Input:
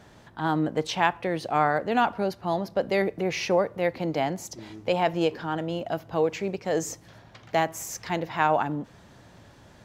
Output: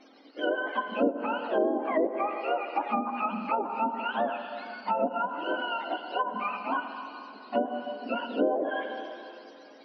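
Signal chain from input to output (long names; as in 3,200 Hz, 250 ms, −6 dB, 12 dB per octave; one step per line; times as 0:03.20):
frequency axis turned over on the octave scale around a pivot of 690 Hz
linear-phase brick-wall band-pass 210–6,100 Hz
on a send at −7 dB: convolution reverb RT60 2.8 s, pre-delay 66 ms
on the sum: treble cut that deepens with the level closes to 570 Hz, closed at −20.5 dBFS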